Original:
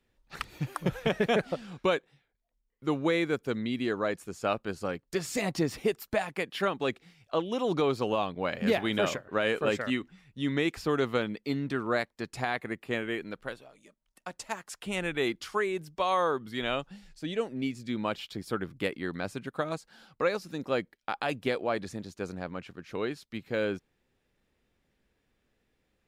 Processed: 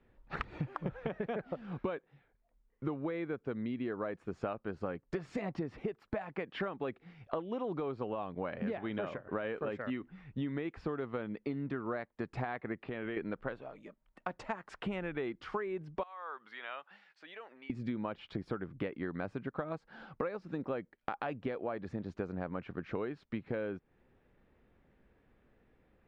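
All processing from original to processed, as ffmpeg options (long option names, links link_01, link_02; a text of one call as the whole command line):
ffmpeg -i in.wav -filter_complex "[0:a]asettb=1/sr,asplit=3[link_01][link_02][link_03];[link_01]atrim=end=12.774[link_04];[link_02]atrim=start=12.77:end=13.17,asetpts=PTS-STARTPTS,afade=type=in:duration=0.004:curve=qsin,afade=type=out:start_time=0.396:duration=0.004:curve=qsin,acompressor=threshold=-41dB:ratio=6:attack=3.2:release=140:knee=1:detection=peak,lowpass=frequency=4400:width_type=q:width=1.7[link_05];[link_03]atrim=start=13.166[link_06];[link_04][link_05]acrossfade=duration=0.004:curve1=hsin:curve2=qsin[link_07];[link_07][link_06]acrossfade=duration=0.004:curve1=qsin:curve2=hsin,asettb=1/sr,asplit=3[link_08][link_09][link_10];[link_08]atrim=end=16.034[link_11];[link_09]atrim=start=16.03:end=17.7,asetpts=PTS-STARTPTS,afade=type=in:duration=0.004:curve=qsin,afade=type=out:start_time=1.666:duration=0.004:curve=qsin,acompressor=threshold=-40dB:ratio=3:attack=3.2:release=140:knee=1:detection=peak,highpass=1200,highshelf=frequency=4400:gain=-6.5[link_12];[link_10]atrim=start=17.696[link_13];[link_11][link_12]acrossfade=duration=0.004:curve1=hsin:curve2=qsin[link_14];[link_14][link_13]acrossfade=duration=0.004:curve1=qsin:curve2=hsin,lowpass=1700,acompressor=threshold=-41dB:ratio=16,volume=7.5dB" out.wav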